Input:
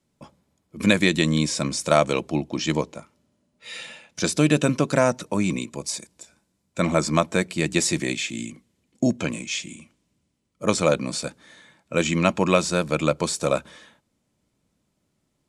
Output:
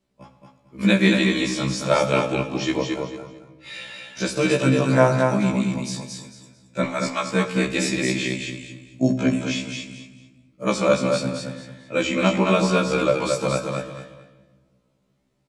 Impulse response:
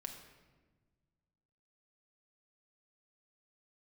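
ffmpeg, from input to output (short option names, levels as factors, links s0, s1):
-filter_complex "[0:a]asettb=1/sr,asplit=3[s0][s1][s2];[s0]atrim=end=6.844[s3];[s1]atrim=start=6.84:end=7.33,asetpts=PTS-STARTPTS,afade=t=in:d=0.004:c=qsin,afade=t=out:st=0.486:d=0.004:c=qsin,highpass=1000[s4];[s2]atrim=start=7.326[s5];[s3][s4]acrossfade=d=0.004:c1=hsin:c2=qsin[s6];[s6][s5]acrossfade=d=0.004:c1=qsin:c2=hsin,aecho=1:1:223|446|669:0.631|0.158|0.0394,asplit=2[s7][s8];[1:a]atrim=start_sample=2205,lowpass=5800[s9];[s8][s9]afir=irnorm=-1:irlink=0,volume=1.68[s10];[s7][s10]amix=inputs=2:normalize=0,afftfilt=real='re*1.73*eq(mod(b,3),0)':imag='im*1.73*eq(mod(b,3),0)':win_size=2048:overlap=0.75,volume=0.668"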